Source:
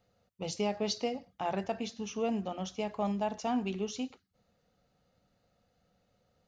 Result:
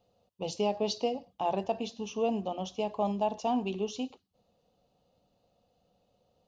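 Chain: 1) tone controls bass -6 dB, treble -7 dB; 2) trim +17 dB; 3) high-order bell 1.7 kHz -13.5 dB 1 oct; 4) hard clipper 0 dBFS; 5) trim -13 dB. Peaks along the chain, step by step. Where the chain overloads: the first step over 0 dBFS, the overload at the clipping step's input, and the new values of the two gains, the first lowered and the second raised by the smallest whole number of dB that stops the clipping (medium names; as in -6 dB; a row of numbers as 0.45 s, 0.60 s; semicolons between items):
-22.0 dBFS, -5.0 dBFS, -5.0 dBFS, -5.0 dBFS, -18.0 dBFS; nothing clips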